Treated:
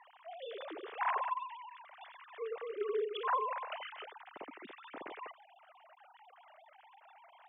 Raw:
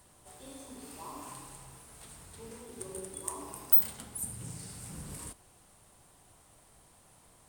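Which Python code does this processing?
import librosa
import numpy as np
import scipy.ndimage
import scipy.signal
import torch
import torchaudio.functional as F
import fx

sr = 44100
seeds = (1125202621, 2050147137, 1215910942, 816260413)

y = fx.sine_speech(x, sr)
y = fx.highpass(y, sr, hz=690.0, slope=6)
y = fx.air_absorb(y, sr, metres=170.0)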